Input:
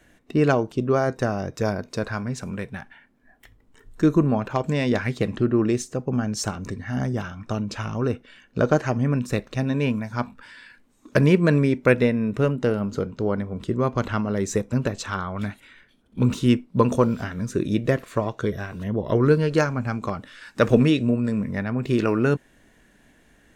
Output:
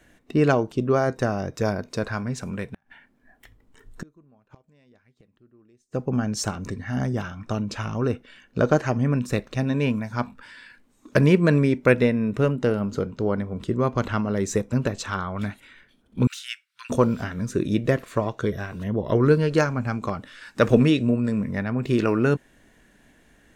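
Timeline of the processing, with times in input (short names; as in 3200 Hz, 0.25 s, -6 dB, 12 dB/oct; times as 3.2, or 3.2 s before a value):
2.66–5.94 flipped gate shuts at -22 dBFS, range -36 dB
16.27–16.9 elliptic high-pass 1500 Hz, stop band 60 dB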